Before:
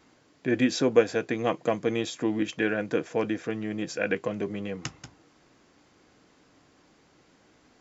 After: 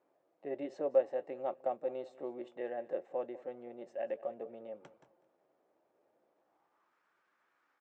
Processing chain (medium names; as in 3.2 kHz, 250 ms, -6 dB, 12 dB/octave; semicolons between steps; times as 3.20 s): band-pass sweep 550 Hz -> 1.2 kHz, 6.33–7.00 s; pitch shift +2 st; feedback delay 197 ms, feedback 31%, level -19 dB; trim -6.5 dB